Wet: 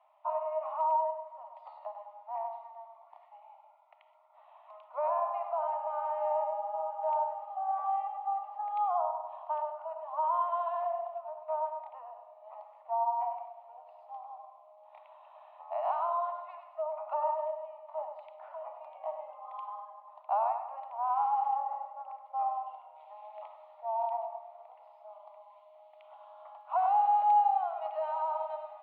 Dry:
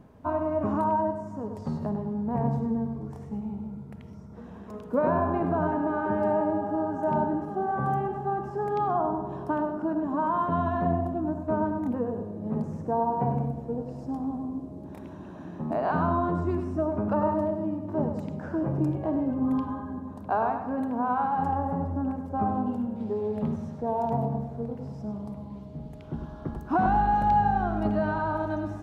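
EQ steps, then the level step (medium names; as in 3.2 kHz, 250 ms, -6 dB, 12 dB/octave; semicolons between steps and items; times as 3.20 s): Chebyshev high-pass 600 Hz, order 6; distance through air 300 m; static phaser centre 1.6 kHz, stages 6; 0.0 dB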